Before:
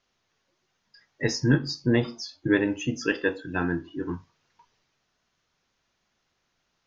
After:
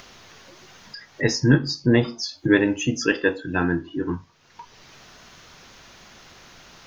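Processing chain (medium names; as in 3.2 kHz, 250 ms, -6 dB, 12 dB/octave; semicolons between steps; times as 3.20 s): 2.23–3.05 s: treble shelf 5.9 kHz +7.5 dB; in parallel at +3 dB: upward compressor, threshold -26 dBFS; on the sum: trim -3 dB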